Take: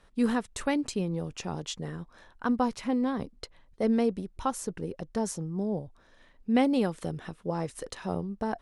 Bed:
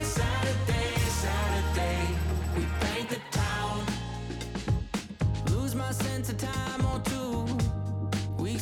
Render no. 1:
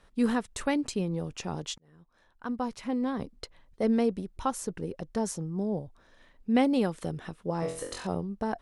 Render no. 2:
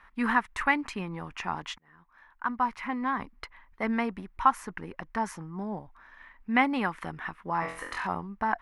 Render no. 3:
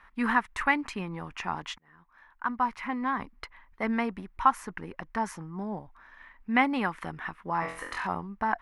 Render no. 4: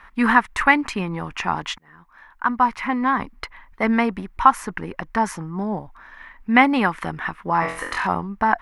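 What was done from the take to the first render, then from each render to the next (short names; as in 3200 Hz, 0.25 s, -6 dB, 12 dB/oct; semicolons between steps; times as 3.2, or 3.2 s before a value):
1.78–3.33 fade in; 7.6–8.07 flutter echo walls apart 3.9 m, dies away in 0.46 s
ten-band EQ 125 Hz -9 dB, 500 Hz -12 dB, 1000 Hz +12 dB, 2000 Hz +12 dB, 4000 Hz -5 dB, 8000 Hz -11 dB
nothing audible
gain +9.5 dB; limiter -1 dBFS, peak gain reduction 1.5 dB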